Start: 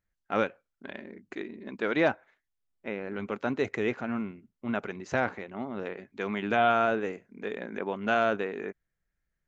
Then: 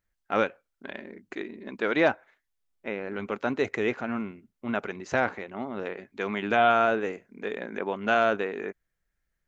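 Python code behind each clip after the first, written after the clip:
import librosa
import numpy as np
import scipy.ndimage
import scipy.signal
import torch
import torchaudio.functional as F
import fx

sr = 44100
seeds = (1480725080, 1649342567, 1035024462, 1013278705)

y = fx.peak_eq(x, sr, hz=140.0, db=-4.0, octaves=1.9)
y = y * librosa.db_to_amplitude(3.0)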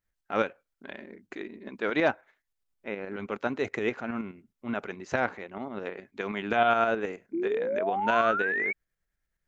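y = fx.tremolo_shape(x, sr, shape='saw_up', hz=9.5, depth_pct=50)
y = fx.spec_paint(y, sr, seeds[0], shape='rise', start_s=7.33, length_s=1.4, low_hz=320.0, high_hz=2300.0, level_db=-29.0)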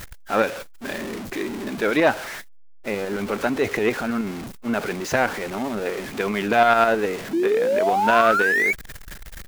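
y = x + 0.5 * 10.0 ** (-35.0 / 20.0) * np.sign(x)
y = fx.transformer_sat(y, sr, knee_hz=1000.0)
y = y * librosa.db_to_amplitude(7.5)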